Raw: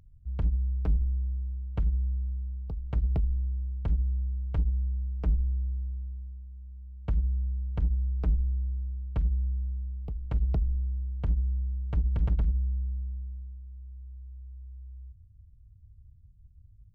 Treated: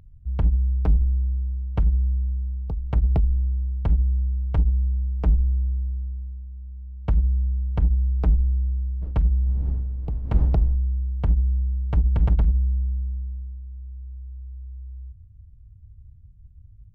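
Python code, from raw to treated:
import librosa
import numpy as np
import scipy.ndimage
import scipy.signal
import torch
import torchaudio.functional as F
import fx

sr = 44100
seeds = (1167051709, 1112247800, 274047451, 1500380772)

y = fx.wiener(x, sr, points=9)
y = fx.dmg_wind(y, sr, seeds[0], corner_hz=110.0, level_db=-41.0, at=(9.01, 10.74), fade=0.02)
y = fx.dynamic_eq(y, sr, hz=820.0, q=2.2, threshold_db=-57.0, ratio=4.0, max_db=4)
y = y * librosa.db_to_amplitude(7.0)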